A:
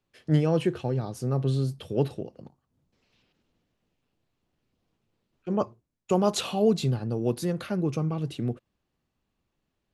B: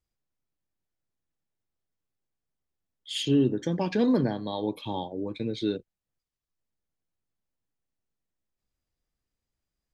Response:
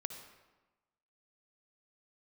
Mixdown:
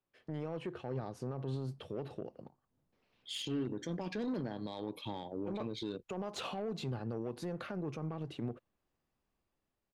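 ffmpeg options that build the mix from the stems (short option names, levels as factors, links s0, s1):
-filter_complex "[0:a]alimiter=limit=0.15:level=0:latency=1:release=133,asplit=2[s0][s1];[s1]highpass=f=720:p=1,volume=2.82,asoftclip=type=tanh:threshold=0.15[s2];[s0][s2]amix=inputs=2:normalize=0,lowpass=f=1100:p=1,volume=0.501,volume=0.562[s3];[1:a]adelay=200,volume=0.501[s4];[s3][s4]amix=inputs=2:normalize=0,aeval=exprs='0.112*(cos(1*acos(clip(val(0)/0.112,-1,1)))-cos(1*PI/2))+0.00501*(cos(5*acos(clip(val(0)/0.112,-1,1)))-cos(5*PI/2))+0.00891*(cos(7*acos(clip(val(0)/0.112,-1,1)))-cos(7*PI/2))':c=same,dynaudnorm=f=340:g=5:m=1.68,alimiter=level_in=2:limit=0.0631:level=0:latency=1:release=66,volume=0.501"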